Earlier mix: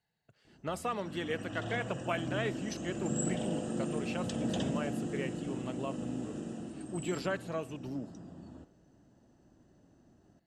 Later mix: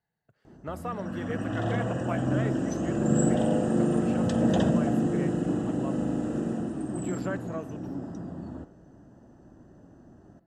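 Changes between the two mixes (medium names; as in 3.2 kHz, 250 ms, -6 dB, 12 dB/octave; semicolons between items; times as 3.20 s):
background +11.0 dB; master: add high-order bell 4.7 kHz -9 dB 2.3 oct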